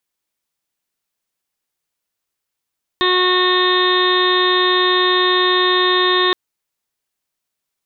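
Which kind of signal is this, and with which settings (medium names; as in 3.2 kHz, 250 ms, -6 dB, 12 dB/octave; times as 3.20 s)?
steady additive tone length 3.32 s, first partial 365 Hz, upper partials -13/-1/-16.5/-3/-17.5/-15/-18.5/-11/-1/-12 dB, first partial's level -17 dB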